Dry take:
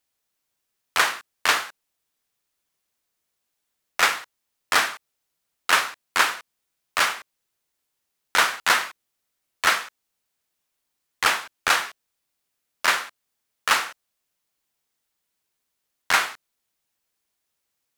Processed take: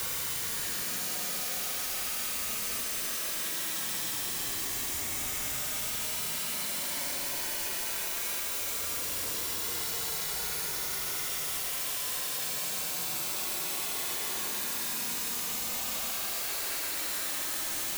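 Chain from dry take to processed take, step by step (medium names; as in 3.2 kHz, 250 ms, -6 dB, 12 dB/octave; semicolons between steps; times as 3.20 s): one-bit comparator; Paulstretch 44×, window 0.05 s, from 3.11 s; trim -4.5 dB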